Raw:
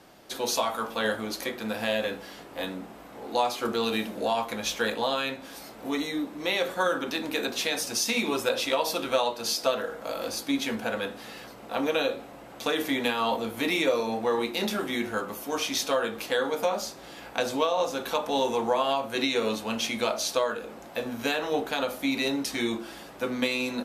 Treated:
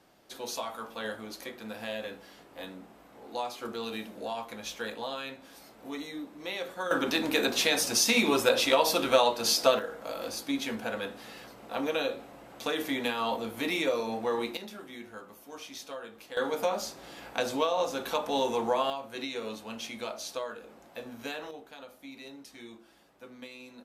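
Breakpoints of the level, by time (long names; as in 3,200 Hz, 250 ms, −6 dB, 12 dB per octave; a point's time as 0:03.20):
−9 dB
from 0:06.91 +2.5 dB
from 0:09.79 −4 dB
from 0:14.57 −15 dB
from 0:16.37 −2.5 dB
from 0:18.90 −10 dB
from 0:21.51 −19 dB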